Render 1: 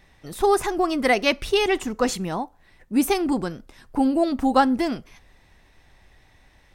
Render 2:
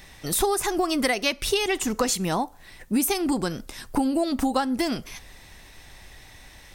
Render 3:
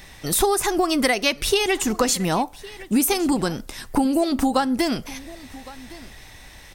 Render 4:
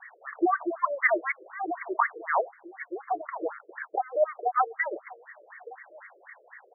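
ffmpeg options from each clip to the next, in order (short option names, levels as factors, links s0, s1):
-af "highshelf=f=3700:g=12,acompressor=threshold=0.0447:ratio=8,volume=2.11"
-af "aecho=1:1:1111:0.1,volume=1.5"
-af "crystalizer=i=5.5:c=0,highpass=f=280:t=q:w=0.5412,highpass=f=280:t=q:w=1.307,lowpass=f=3100:t=q:w=0.5176,lowpass=f=3100:t=q:w=0.7071,lowpass=f=3100:t=q:w=1.932,afreqshift=-61,afftfilt=real='re*between(b*sr/1024,430*pow(1600/430,0.5+0.5*sin(2*PI*4*pts/sr))/1.41,430*pow(1600/430,0.5+0.5*sin(2*PI*4*pts/sr))*1.41)':imag='im*between(b*sr/1024,430*pow(1600/430,0.5+0.5*sin(2*PI*4*pts/sr))/1.41,430*pow(1600/430,0.5+0.5*sin(2*PI*4*pts/sr))*1.41)':win_size=1024:overlap=0.75"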